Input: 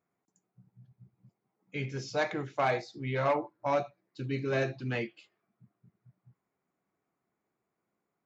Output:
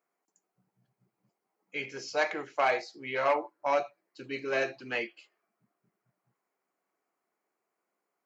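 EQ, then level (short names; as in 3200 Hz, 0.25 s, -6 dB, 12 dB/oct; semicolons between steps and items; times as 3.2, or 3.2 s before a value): HPF 410 Hz 12 dB/oct; notch 3600 Hz, Q 6.3; dynamic EQ 3100 Hz, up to +4 dB, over -47 dBFS, Q 1; +2.0 dB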